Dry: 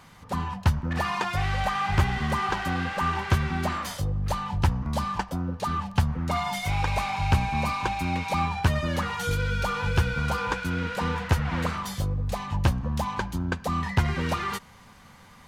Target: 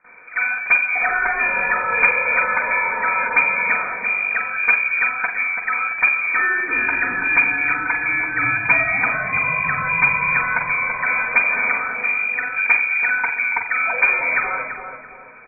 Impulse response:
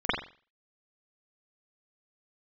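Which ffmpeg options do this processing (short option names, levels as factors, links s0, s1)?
-filter_complex "[0:a]lowpass=f=2100:t=q:w=0.5098,lowpass=f=2100:t=q:w=0.6013,lowpass=f=2100:t=q:w=0.9,lowpass=f=2100:t=q:w=2.563,afreqshift=-2500,asettb=1/sr,asplit=3[s0][s1][s2];[s0]atrim=end=8.334[s3];[s1]atrim=start=8.33:end=10.36,asetpts=PTS-STARTPTS,afade=t=in:d=0.004:c=qsin,afade=t=out:st=2.026:d=0.004:c=qsin,equalizer=f=140:t=o:w=1.7:g=12[s4];[s2]atrim=start=10.356[s5];[s3][s4]acrossfade=d=0.004:c1=hsin:c2=qsin[s6];[s6][s5]acrossfade=d=0.004:c1=qsin:c2=hsin,asplit=2[s7][s8];[s8]adelay=334,lowpass=f=1000:p=1,volume=0.596,asplit=2[s9][s10];[s10]adelay=334,lowpass=f=1000:p=1,volume=0.47,asplit=2[s11][s12];[s12]adelay=334,lowpass=f=1000:p=1,volume=0.47,asplit=2[s13][s14];[s14]adelay=334,lowpass=f=1000:p=1,volume=0.47,asplit=2[s15][s16];[s16]adelay=334,lowpass=f=1000:p=1,volume=0.47,asplit=2[s17][s18];[s18]adelay=334,lowpass=f=1000:p=1,volume=0.47[s19];[s7][s9][s11][s13][s15][s17][s19]amix=inputs=7:normalize=0[s20];[1:a]atrim=start_sample=2205[s21];[s20][s21]afir=irnorm=-1:irlink=0,volume=0.447"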